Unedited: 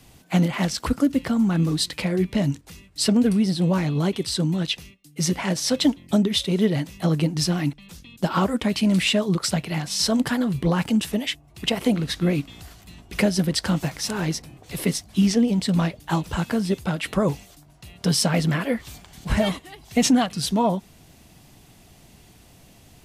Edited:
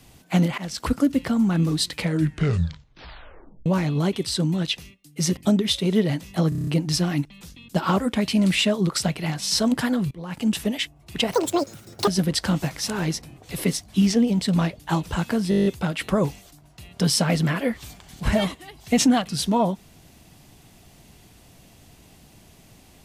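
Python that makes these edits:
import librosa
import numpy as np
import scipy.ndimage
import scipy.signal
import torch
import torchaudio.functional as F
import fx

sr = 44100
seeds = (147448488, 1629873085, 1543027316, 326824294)

y = fx.edit(x, sr, fx.fade_in_from(start_s=0.58, length_s=0.27, floor_db=-17.0),
    fx.tape_stop(start_s=1.96, length_s=1.7),
    fx.cut(start_s=5.37, length_s=0.66),
    fx.stutter(start_s=7.15, slice_s=0.03, count=7),
    fx.fade_in_from(start_s=10.59, length_s=0.4, curve='qua', floor_db=-19.0),
    fx.speed_span(start_s=11.81, length_s=1.47, speed=1.97),
    fx.stutter(start_s=16.7, slice_s=0.02, count=9), tone=tone)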